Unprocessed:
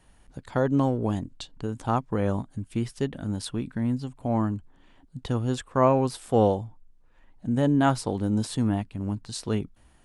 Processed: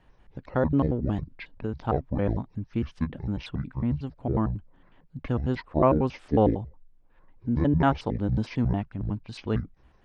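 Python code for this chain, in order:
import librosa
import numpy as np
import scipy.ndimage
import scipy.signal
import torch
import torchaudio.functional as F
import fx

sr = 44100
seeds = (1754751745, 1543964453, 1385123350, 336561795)

y = fx.pitch_trill(x, sr, semitones=-9.5, every_ms=91)
y = scipy.signal.sosfilt(scipy.signal.butter(2, 2900.0, 'lowpass', fs=sr, output='sos'), y)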